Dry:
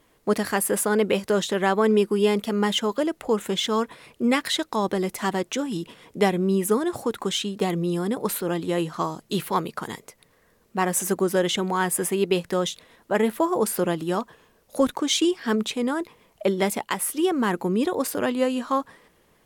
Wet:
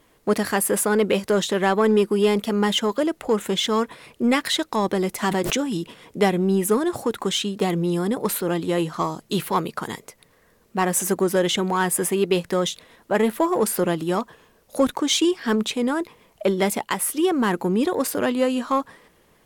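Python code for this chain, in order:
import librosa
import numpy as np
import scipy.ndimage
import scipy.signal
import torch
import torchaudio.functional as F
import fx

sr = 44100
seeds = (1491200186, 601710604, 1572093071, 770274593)

p1 = np.clip(10.0 ** (22.0 / 20.0) * x, -1.0, 1.0) / 10.0 ** (22.0 / 20.0)
p2 = x + (p1 * librosa.db_to_amplitude(-8.5))
y = fx.pre_swell(p2, sr, db_per_s=27.0, at=(5.23, 5.76))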